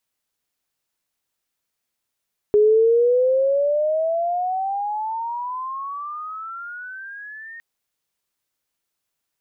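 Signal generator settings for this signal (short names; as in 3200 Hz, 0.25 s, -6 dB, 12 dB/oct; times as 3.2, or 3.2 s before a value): gliding synth tone sine, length 5.06 s, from 414 Hz, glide +26 st, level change -24 dB, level -11 dB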